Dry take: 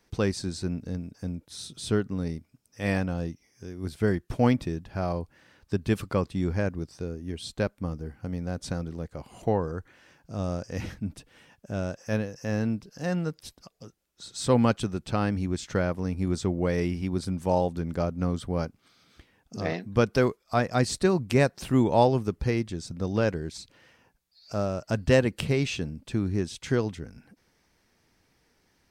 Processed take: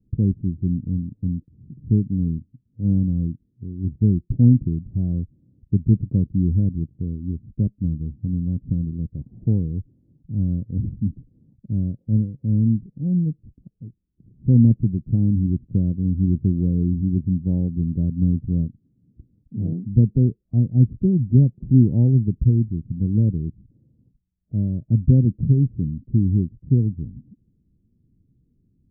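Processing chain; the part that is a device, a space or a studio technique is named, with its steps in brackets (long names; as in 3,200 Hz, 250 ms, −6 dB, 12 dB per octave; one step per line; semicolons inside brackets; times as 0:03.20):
the neighbour's flat through the wall (low-pass filter 260 Hz 24 dB per octave; parametric band 120 Hz +5 dB 0.58 octaves)
level +8.5 dB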